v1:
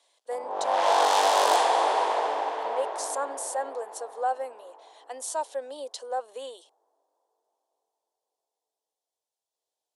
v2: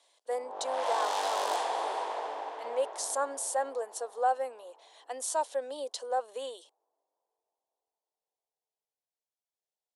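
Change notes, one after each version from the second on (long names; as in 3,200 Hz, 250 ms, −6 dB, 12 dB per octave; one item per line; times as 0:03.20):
background −9.5 dB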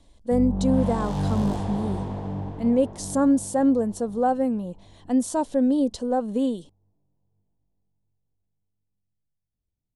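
background −8.0 dB
master: remove Bessel high-pass filter 810 Hz, order 8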